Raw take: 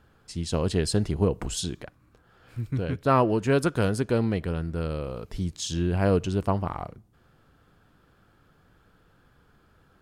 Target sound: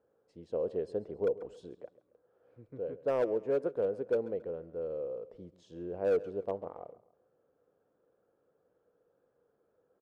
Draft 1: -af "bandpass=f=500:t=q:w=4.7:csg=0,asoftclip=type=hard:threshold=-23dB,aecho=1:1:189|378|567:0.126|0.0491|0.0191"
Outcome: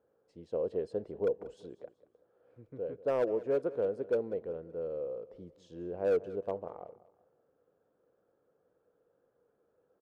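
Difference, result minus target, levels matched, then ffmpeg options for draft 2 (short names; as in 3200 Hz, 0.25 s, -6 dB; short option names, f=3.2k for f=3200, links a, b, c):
echo 53 ms late
-af "bandpass=f=500:t=q:w=4.7:csg=0,asoftclip=type=hard:threshold=-23dB,aecho=1:1:136|272|408:0.126|0.0491|0.0191"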